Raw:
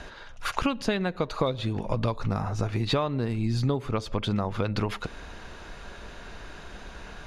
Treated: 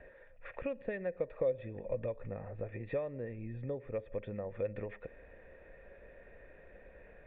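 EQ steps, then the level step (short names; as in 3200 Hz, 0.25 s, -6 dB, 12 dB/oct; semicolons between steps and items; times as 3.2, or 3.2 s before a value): vocal tract filter e; low shelf 150 Hz +5.5 dB; 0.0 dB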